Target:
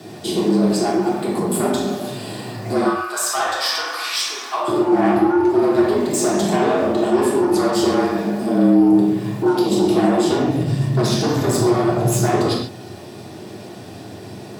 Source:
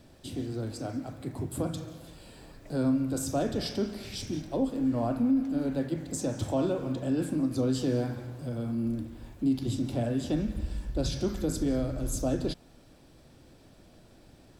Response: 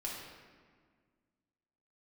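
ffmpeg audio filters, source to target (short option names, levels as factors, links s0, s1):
-filter_complex "[0:a]asplit=2[s0][s1];[s1]alimiter=level_in=1.88:limit=0.0631:level=0:latency=1,volume=0.531,volume=1.41[s2];[s0][s2]amix=inputs=2:normalize=0,asettb=1/sr,asplit=3[s3][s4][s5];[s3]atrim=end=2.854[s6];[s4]atrim=start=2.85:end=4.68,asetpts=PTS-STARTPTS,afade=t=in:d=0.004:c=qsin,afade=t=out:st=1.826:d=0.004:c=qsin,highpass=f=1100:t=q:w=4.9[s7];[s5]atrim=start=4.676[s8];[s6][s7]acrossfade=d=0.004:c1=hsin:c2=qsin[s9];[s9][s8]acrossfade=d=0.004:c1=qsin:c2=hsin,aeval=exprs='0.188*(cos(1*acos(clip(val(0)/0.188,-1,1)))-cos(1*PI/2))+0.075*(cos(5*acos(clip(val(0)/0.188,-1,1)))-cos(5*PI/2))':c=same,afreqshift=85[s10];[1:a]atrim=start_sample=2205,afade=t=out:st=0.2:d=0.01,atrim=end_sample=9261[s11];[s10][s11]afir=irnorm=-1:irlink=0,volume=1.41"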